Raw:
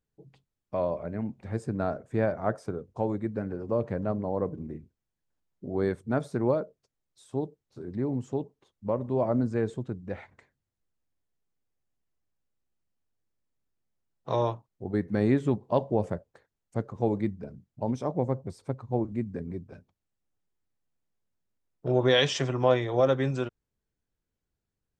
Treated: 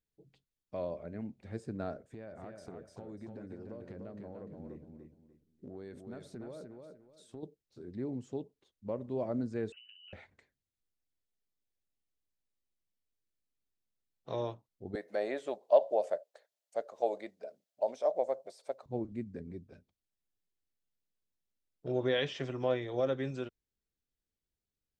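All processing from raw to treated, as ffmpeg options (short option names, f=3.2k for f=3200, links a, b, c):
-filter_complex "[0:a]asettb=1/sr,asplit=3[a][b][c];[a]atrim=end=2.054[d];[b]atrim=start=2.05:end=7.43,asetpts=PTS-STARTPTS,afade=t=in:d=0.004:c=qsin,afade=t=out:st=5.376:d=0.004:c=qsin,acompressor=threshold=-33dB:ratio=10:attack=3.2:release=140:knee=1:detection=peak,aecho=1:1:297|594|891:0.562|0.146|0.038,atrim=end_sample=237258[e];[c]atrim=start=7.426[f];[d][e]acrossfade=d=0.004:c1=hsin:c2=qsin[g];[g][f]acrossfade=d=0.004:c1=qsin:c2=hsin,asettb=1/sr,asplit=3[h][i][j];[h]atrim=end=9.724[k];[i]atrim=start=9.72:end=10.13,asetpts=PTS-STARTPTS,afade=t=in:d=0.004:c=qsin,afade=t=out:st=0.406:d=0.004:c=qsin,asplit=2[l][m];[m]adelay=41,volume=-11dB[n];[l][n]amix=inputs=2:normalize=0,atrim=end_sample=18081,lowpass=f=2.6k:t=q:w=0.5098,lowpass=f=2.6k:t=q:w=0.6013,lowpass=f=2.6k:t=q:w=0.9,lowpass=f=2.6k:t=q:w=2.563,afreqshift=-3100,acompressor=threshold=-46dB:ratio=16:attack=3.2:release=140:knee=1:detection=peak[o];[j]atrim=start=10.126[p];[k][o]acrossfade=d=0.004:c1=hsin:c2=qsin[q];[q][p]acrossfade=d=0.004:c1=qsin:c2=hsin,asettb=1/sr,asplit=3[r][s][t];[r]atrim=end=14.954[u];[s]atrim=start=14.95:end=18.86,asetpts=PTS-STARTPTS,afade=t=in:d=0.004:c=qsin,afade=t=out:st=3.906:d=0.004:c=qsin,highpass=f=620:t=q:w=5.6,highshelf=f=2.9k:g=8[v];[t]atrim=start=18.856[w];[u][v]acrossfade=d=0.004:c1=hsin:c2=qsin[x];[x][w]acrossfade=d=0.004:c1=qsin:c2=hsin,acrossover=split=2800[y][z];[z]acompressor=threshold=-51dB:ratio=4:attack=1:release=60[aa];[y][aa]amix=inputs=2:normalize=0,equalizer=f=125:t=o:w=1:g=-5,equalizer=f=1k:t=o:w=1:g=-7,equalizer=f=4k:t=o:w=1:g=4,volume=-6.5dB"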